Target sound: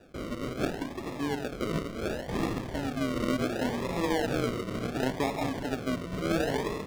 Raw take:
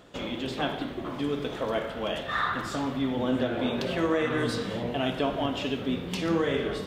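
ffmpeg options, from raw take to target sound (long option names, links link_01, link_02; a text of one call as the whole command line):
ffmpeg -i in.wav -af "acrusher=samples=41:mix=1:aa=0.000001:lfo=1:lforange=24.6:lforate=0.7,highshelf=frequency=6900:gain=-10,volume=-2dB" out.wav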